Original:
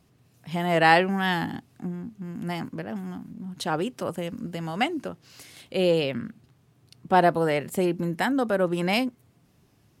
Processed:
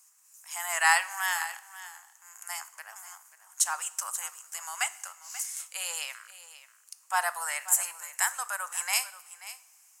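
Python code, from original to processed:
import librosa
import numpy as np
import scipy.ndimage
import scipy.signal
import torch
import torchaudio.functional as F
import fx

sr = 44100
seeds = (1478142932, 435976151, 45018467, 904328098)

y = scipy.signal.sosfilt(scipy.signal.butter(6, 930.0, 'highpass', fs=sr, output='sos'), x)
y = fx.high_shelf_res(y, sr, hz=5200.0, db=12.0, q=3.0)
y = y + 10.0 ** (-15.5 / 20.0) * np.pad(y, (int(535 * sr / 1000.0), 0))[:len(y)]
y = fx.rev_double_slope(y, sr, seeds[0], early_s=0.59, late_s=2.6, knee_db=-17, drr_db=13.5)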